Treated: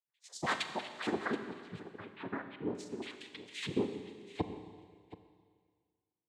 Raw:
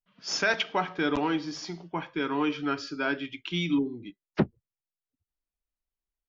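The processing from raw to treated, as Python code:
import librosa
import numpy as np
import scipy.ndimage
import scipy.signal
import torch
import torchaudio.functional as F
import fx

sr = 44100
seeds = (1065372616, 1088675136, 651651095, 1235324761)

y = fx.spec_dropout(x, sr, seeds[0], share_pct=69)
y = fx.noise_reduce_blind(y, sr, reduce_db=23)
y = fx.noise_vocoder(y, sr, seeds[1], bands=6)
y = fx.air_absorb(y, sr, metres=480.0, at=(1.32, 2.75))
y = y + 10.0 ** (-16.0 / 20.0) * np.pad(y, (int(727 * sr / 1000.0), 0))[:len(y)]
y = fx.rev_schroeder(y, sr, rt60_s=1.8, comb_ms=29, drr_db=8.0)
y = y * 10.0 ** (-5.0 / 20.0)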